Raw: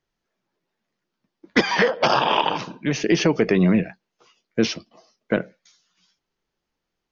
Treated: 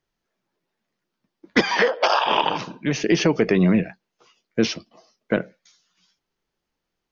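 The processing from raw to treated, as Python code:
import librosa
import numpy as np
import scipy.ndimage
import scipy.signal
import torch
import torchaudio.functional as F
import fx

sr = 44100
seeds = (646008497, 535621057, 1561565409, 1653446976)

y = fx.highpass(x, sr, hz=fx.line((1.68, 170.0), (2.26, 650.0)), slope=24, at=(1.68, 2.26), fade=0.02)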